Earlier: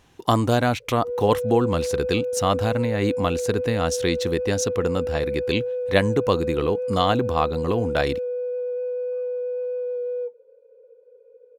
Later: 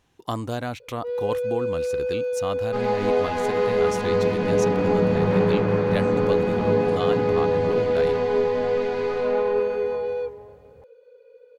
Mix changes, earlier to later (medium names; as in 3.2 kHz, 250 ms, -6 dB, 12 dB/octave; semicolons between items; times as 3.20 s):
speech -9.0 dB; first sound: remove band-pass filter 430 Hz, Q 1.4; second sound: unmuted